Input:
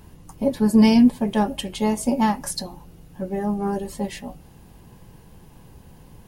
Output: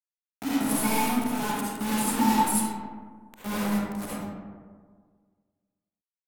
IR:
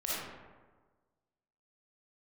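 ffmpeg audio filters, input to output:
-filter_complex "[0:a]acrossover=split=6200[link_01][link_02];[link_02]dynaudnorm=framelen=420:gausssize=3:maxgain=10dB[link_03];[link_01][link_03]amix=inputs=2:normalize=0,aeval=exprs='val(0)+0.01*(sin(2*PI*50*n/s)+sin(2*PI*2*50*n/s)/2+sin(2*PI*3*50*n/s)/3+sin(2*PI*4*50*n/s)/4+sin(2*PI*5*50*n/s)/5)':channel_layout=same,asplit=3[link_04][link_05][link_06];[link_04]bandpass=frequency=300:width_type=q:width=8,volume=0dB[link_07];[link_05]bandpass=frequency=870:width_type=q:width=8,volume=-6dB[link_08];[link_06]bandpass=frequency=2240:width_type=q:width=8,volume=-9dB[link_09];[link_07][link_08][link_09]amix=inputs=3:normalize=0,aecho=1:1:0.8:1,aphaser=in_gain=1:out_gain=1:delay=2.5:decay=0.56:speed=1.7:type=triangular,crystalizer=i=1.5:c=0,asettb=1/sr,asplit=3[link_10][link_11][link_12];[link_10]atrim=end=0.514[link_13];[link_11]atrim=start=0.51:end=1.26,asetpts=PTS-STARTPTS,afade=type=in:duration=0.004:curve=qsin,afade=type=out:start_time=0.746:duration=0.004:curve=qsin,equalizer=frequency=250:width_type=o:width=0.67:gain=-11,equalizer=frequency=1600:width_type=o:width=0.67:gain=-5,equalizer=frequency=10000:width_type=o:width=0.67:gain=7[link_14];[link_12]atrim=start=1.256[link_15];[link_13][link_14]acrossfade=duration=0.004:curve1=hsin:curve2=qsin[link_16];[link_16][link_15]acrossfade=duration=0.004:curve1=qsin:curve2=hsin,aexciter=amount=10.4:drive=1.9:freq=7600,equalizer=frequency=4500:width=1.6:gain=-3,acrusher=bits=4:mix=0:aa=0.000001[link_17];[1:a]atrim=start_sample=2205,asetrate=34839,aresample=44100[link_18];[link_17][link_18]afir=irnorm=-1:irlink=0,volume=-3dB"

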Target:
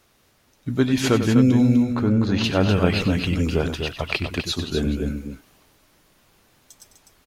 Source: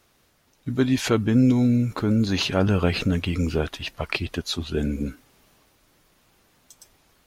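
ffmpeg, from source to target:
ffmpeg -i in.wav -filter_complex "[0:a]asettb=1/sr,asplit=3[link_01][link_02][link_03];[link_01]atrim=end=1.834[link_04];[link_02]atrim=start=1.83:end=2.44,asetpts=PTS-STARTPTS,afade=type=in:duration=0.004:curve=qsin,afade=type=out:start_time=0.606:duration=0.004:curve=qsin,lowpass=frequency=2200:poles=1[link_05];[link_03]atrim=start=2.436[link_06];[link_04][link_05]acrossfade=duration=0.004:curve1=hsin:curve2=qsin[link_07];[link_07][link_06]acrossfade=duration=0.004:curve1=qsin:curve2=hsin,aecho=1:1:96.21|250.7:0.282|0.447,volume=1.5dB" out.wav

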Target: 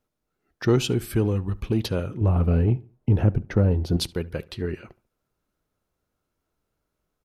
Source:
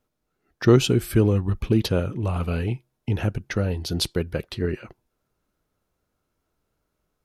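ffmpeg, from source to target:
ffmpeg -i in.wav -filter_complex "[0:a]asettb=1/sr,asplit=3[link_01][link_02][link_03];[link_01]atrim=end=2.214[link_04];[link_02]atrim=start=2.21:end=3.97,asetpts=PTS-STARTPTS,afade=type=in:duration=0.004:curve=qsin,afade=type=out:start_time=1.756:duration=0.004:curve=qsin,tiltshelf=frequency=1400:gain=9.5[link_05];[link_03]atrim=start=3.966[link_06];[link_04][link_05]acrossfade=duration=0.004:curve1=hsin:curve2=qsin[link_07];[link_07][link_06]acrossfade=duration=0.004:curve1=qsin:curve2=hsin,asplit=2[link_08][link_09];[link_09]asoftclip=type=tanh:threshold=-14.5dB,volume=-6dB[link_10];[link_08][link_10]amix=inputs=2:normalize=0,asplit=2[link_11][link_12];[link_12]adelay=71,lowpass=frequency=3100:poles=1,volume=-21.5dB,asplit=2[link_13][link_14];[link_14]adelay=71,lowpass=frequency=3100:poles=1,volume=0.35,asplit=2[link_15][link_16];[link_16]adelay=71,lowpass=frequency=3100:poles=1,volume=0.35[link_17];[link_11][link_13][link_15][link_17]amix=inputs=4:normalize=0,volume=-6.5dB" out.wav

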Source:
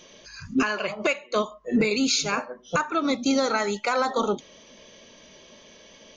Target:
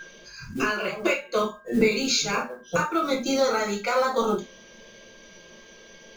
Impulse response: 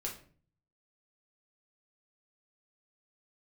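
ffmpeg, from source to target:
-filter_complex "[0:a]acrusher=bits=7:mode=log:mix=0:aa=0.000001,aeval=exprs='val(0)+0.0178*sin(2*PI*1600*n/s)':channel_layout=same[link_01];[1:a]atrim=start_sample=2205,atrim=end_sample=4410[link_02];[link_01][link_02]afir=irnorm=-1:irlink=0"

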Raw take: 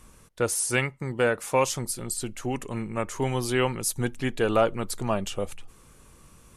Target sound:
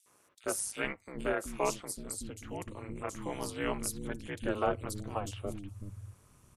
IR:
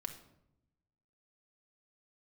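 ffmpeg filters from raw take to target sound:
-filter_complex "[0:a]acrossover=split=250|3400[link_01][link_02][link_03];[link_02]adelay=60[link_04];[link_01]adelay=440[link_05];[link_05][link_04][link_03]amix=inputs=3:normalize=0,aeval=exprs='val(0)*sin(2*PI*100*n/s)':channel_layout=same,volume=-5.5dB"

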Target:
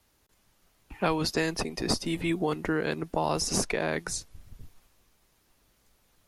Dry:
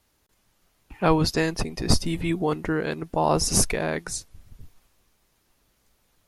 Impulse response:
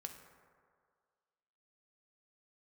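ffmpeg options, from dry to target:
-filter_complex "[0:a]acrossover=split=200|1800|7700[link_01][link_02][link_03][link_04];[link_01]acompressor=threshold=-39dB:ratio=4[link_05];[link_02]acompressor=threshold=-25dB:ratio=4[link_06];[link_03]acompressor=threshold=-30dB:ratio=4[link_07];[link_04]acompressor=threshold=-41dB:ratio=4[link_08];[link_05][link_06][link_07][link_08]amix=inputs=4:normalize=0"

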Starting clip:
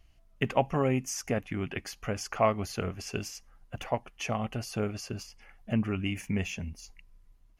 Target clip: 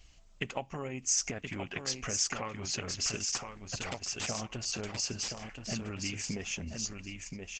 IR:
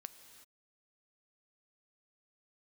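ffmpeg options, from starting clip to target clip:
-filter_complex "[0:a]asettb=1/sr,asplit=3[link_01][link_02][link_03];[link_01]atrim=end=6.294[link_04];[link_02]atrim=start=6.29:end=6.75,asetpts=PTS-STARTPTS,afade=type=in:duration=0.004:curve=qsin,afade=type=out:start_time=0.456:duration=0.004:curve=qsin,equalizer=frequency=450:width=0.67:gain=9[link_05];[link_03]atrim=start=6.746[link_06];[link_04][link_05]acrossfade=duration=0.004:curve1=hsin:curve2=qsin[link_07];[link_07][link_06]acrossfade=duration=0.004:curve1=qsin:curve2=hsin,acompressor=threshold=-39dB:ratio=4,crystalizer=i=5:c=0,asettb=1/sr,asplit=3[link_08][link_09][link_10];[link_08]atrim=end=2.244[link_11];[link_09]atrim=start=2.24:end=2.75,asetpts=PTS-STARTPTS,afade=type=in:duration=0.004:curve=qsin,afade=type=out:start_time=0.506:duration=0.004:curve=qsin,asuperstop=centerf=660:order=4:qfactor=6.6[link_12];[link_10]atrim=start=2.746[link_13];[link_11][link_12]acrossfade=duration=0.004:curve1=hsin:curve2=qsin[link_14];[link_14][link_13]acrossfade=duration=0.004:curve1=qsin:curve2=hsin,asettb=1/sr,asplit=3[link_15][link_16][link_17];[link_15]atrim=end=3.354[link_18];[link_16]atrim=start=3.35:end=4.65,asetpts=PTS-STARTPTS,afade=type=in:duration=0.004:curve=qsin,afade=type=out:start_time=1.296:duration=0.004:curve=qsin,aeval=exprs='(mod(23.7*val(0)+1,2)-1)/23.7':channel_layout=same[link_19];[link_17]atrim=start=4.646[link_20];[link_18][link_19]acrossfade=duration=0.004:curve1=hsin:curve2=qsin[link_21];[link_21][link_20]acrossfade=duration=0.004:curve1=qsin:curve2=hsin,aecho=1:1:1025|2050|3075:0.531|0.0903|0.0153,volume=2dB" -ar 48000 -c:a libopus -b:a 12k

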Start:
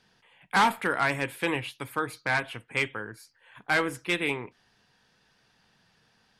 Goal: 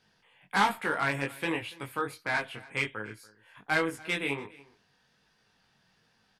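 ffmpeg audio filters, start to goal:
ffmpeg -i in.wav -filter_complex "[0:a]flanger=delay=18.5:depth=3.6:speed=1.3,asplit=2[link_01][link_02];[link_02]aecho=0:1:286:0.0794[link_03];[link_01][link_03]amix=inputs=2:normalize=0" out.wav

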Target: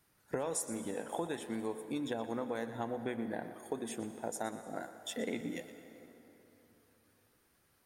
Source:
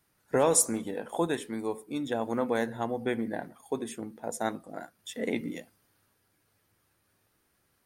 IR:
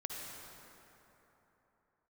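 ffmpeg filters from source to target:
-filter_complex "[0:a]acompressor=threshold=-34dB:ratio=6,asplit=2[link_01][link_02];[1:a]atrim=start_sample=2205,lowshelf=frequency=180:gain=-10.5,adelay=120[link_03];[link_02][link_03]afir=irnorm=-1:irlink=0,volume=-9.5dB[link_04];[link_01][link_04]amix=inputs=2:normalize=0"

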